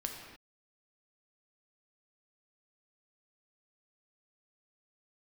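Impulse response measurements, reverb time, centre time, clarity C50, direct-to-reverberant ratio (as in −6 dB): non-exponential decay, 49 ms, 3.5 dB, 1.5 dB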